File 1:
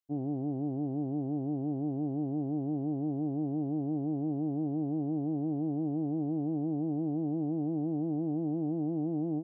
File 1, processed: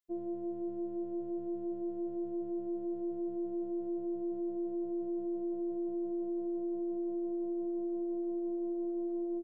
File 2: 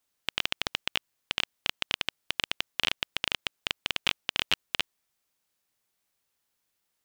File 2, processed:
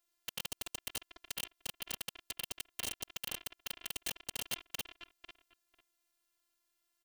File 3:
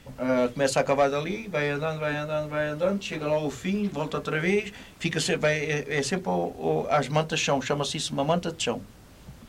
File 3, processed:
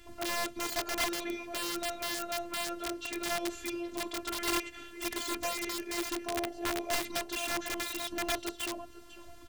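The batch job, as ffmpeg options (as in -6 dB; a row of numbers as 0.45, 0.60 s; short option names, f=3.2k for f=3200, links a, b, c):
-filter_complex "[0:a]asplit=2[a][b];[b]acompressor=threshold=-35dB:ratio=5,volume=-2dB[c];[a][c]amix=inputs=2:normalize=0,afftfilt=real='hypot(re,im)*cos(PI*b)':imag='0':win_size=512:overlap=0.75,asplit=2[d][e];[e]adelay=497,lowpass=f=2.3k:p=1,volume=-15.5dB,asplit=2[f][g];[g]adelay=497,lowpass=f=2.3k:p=1,volume=0.2[h];[d][f][h]amix=inputs=3:normalize=0,aeval=exprs='(mod(10.6*val(0)+1,2)-1)/10.6':c=same,volume=-4.5dB"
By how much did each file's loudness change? -4.0, -10.5, -8.0 LU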